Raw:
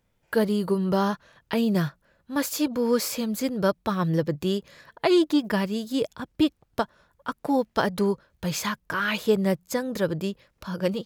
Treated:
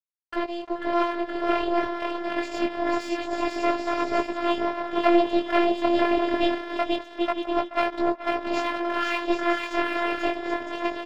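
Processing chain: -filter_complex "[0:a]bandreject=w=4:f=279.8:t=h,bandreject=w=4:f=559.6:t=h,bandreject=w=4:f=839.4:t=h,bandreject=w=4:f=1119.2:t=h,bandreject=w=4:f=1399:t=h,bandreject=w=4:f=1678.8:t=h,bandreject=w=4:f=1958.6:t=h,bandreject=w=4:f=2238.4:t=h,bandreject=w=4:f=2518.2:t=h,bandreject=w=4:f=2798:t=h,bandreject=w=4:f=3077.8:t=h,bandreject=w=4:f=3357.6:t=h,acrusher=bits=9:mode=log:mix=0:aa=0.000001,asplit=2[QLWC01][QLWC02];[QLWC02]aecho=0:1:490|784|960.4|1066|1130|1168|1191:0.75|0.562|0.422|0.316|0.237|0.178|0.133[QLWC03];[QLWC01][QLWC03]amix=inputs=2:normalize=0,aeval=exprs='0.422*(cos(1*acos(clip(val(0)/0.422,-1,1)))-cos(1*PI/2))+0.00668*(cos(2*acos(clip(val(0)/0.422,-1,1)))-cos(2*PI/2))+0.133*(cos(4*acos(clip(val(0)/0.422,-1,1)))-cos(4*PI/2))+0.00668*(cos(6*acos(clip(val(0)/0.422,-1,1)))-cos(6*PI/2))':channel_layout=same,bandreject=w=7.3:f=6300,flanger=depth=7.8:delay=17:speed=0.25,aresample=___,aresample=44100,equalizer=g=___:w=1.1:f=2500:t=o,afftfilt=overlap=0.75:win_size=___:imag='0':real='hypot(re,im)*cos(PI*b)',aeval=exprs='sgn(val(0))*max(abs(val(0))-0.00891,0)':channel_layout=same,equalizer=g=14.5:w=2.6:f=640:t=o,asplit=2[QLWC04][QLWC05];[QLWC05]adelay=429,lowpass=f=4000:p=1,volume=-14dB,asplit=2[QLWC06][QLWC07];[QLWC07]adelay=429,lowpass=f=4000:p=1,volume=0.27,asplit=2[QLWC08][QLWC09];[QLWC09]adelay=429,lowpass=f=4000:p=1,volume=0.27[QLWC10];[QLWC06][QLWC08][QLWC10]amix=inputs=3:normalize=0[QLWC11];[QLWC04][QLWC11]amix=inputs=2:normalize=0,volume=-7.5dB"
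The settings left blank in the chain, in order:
16000, 11, 512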